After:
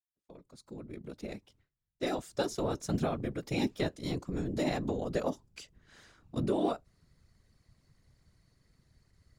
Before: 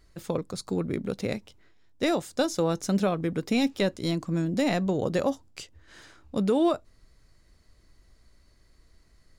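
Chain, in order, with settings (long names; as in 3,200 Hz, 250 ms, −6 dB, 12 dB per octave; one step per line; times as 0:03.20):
fade in at the beginning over 2.40 s
noise gate with hold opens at −51 dBFS
random phases in short frames
level −7 dB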